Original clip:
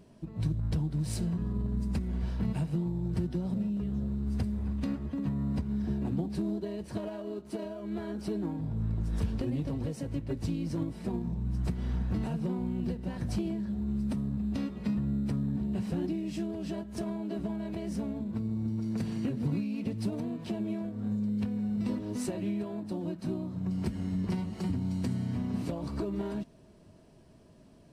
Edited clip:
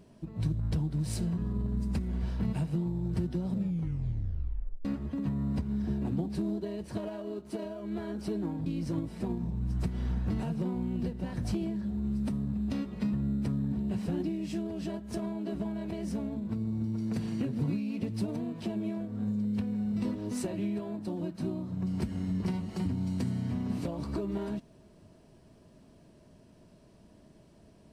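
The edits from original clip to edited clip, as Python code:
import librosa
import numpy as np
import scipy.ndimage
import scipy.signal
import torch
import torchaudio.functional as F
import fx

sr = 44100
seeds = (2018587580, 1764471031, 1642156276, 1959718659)

y = fx.edit(x, sr, fx.tape_stop(start_s=3.55, length_s=1.3),
    fx.cut(start_s=8.66, length_s=1.84), tone=tone)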